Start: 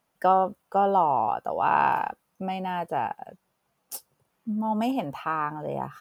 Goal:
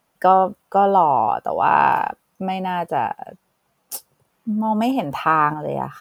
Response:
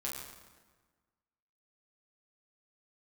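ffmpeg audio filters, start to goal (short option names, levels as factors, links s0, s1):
-filter_complex "[0:a]asettb=1/sr,asplit=3[s0][s1][s2];[s0]atrim=end=5.114[s3];[s1]atrim=start=5.11:end=5.54,asetpts=PTS-STARTPTS,afade=t=in:d=0.004:c=qsin,afade=t=out:st=0.426:d=0.004:c=qsin,acontrast=24[s4];[s2]atrim=start=5.536[s5];[s3][s4]acrossfade=d=0.004:c1=hsin:c2=qsin[s6];[s6][s5]acrossfade=d=0.004:c1=qsin:c2=hsin,volume=2.11"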